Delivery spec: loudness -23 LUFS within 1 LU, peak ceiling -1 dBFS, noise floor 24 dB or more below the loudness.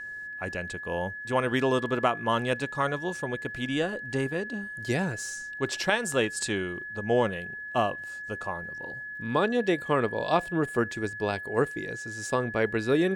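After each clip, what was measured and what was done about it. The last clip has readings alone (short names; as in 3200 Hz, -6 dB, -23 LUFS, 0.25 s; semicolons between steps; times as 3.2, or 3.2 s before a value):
ticks 18/s; steady tone 1700 Hz; tone level -36 dBFS; loudness -29.0 LUFS; peak -8.0 dBFS; loudness target -23.0 LUFS
-> de-click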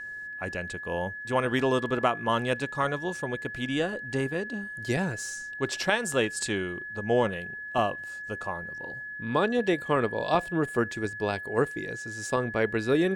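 ticks 0/s; steady tone 1700 Hz; tone level -36 dBFS
-> notch 1700 Hz, Q 30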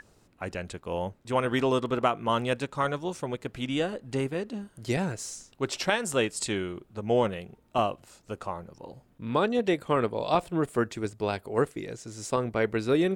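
steady tone none; loudness -29.5 LUFS; peak -9.0 dBFS; loudness target -23.0 LUFS
-> gain +6.5 dB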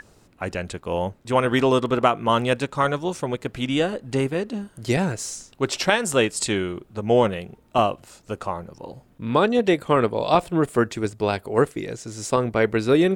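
loudness -23.0 LUFS; peak -2.5 dBFS; noise floor -56 dBFS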